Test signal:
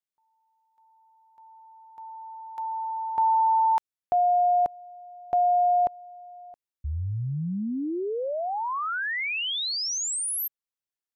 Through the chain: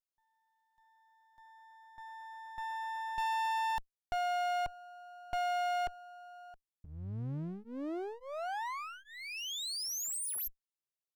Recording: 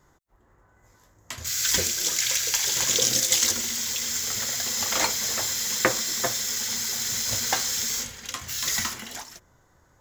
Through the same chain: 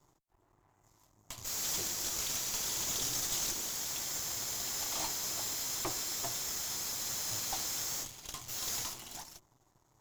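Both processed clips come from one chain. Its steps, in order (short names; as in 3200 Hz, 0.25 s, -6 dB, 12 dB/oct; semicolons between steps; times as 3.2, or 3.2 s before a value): fixed phaser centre 330 Hz, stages 8; half-wave rectifier; tube stage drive 21 dB, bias 0.35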